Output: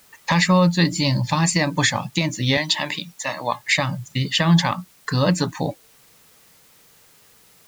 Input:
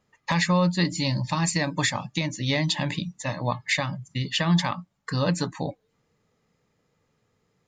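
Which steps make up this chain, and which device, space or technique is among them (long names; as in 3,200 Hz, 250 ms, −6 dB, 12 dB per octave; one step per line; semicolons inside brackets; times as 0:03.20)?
0:02.57–0:03.68: meter weighting curve A
noise-reduction cassette on a plain deck (one half of a high-frequency compander encoder only; tape wow and flutter; white noise bed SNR 32 dB)
level +5.5 dB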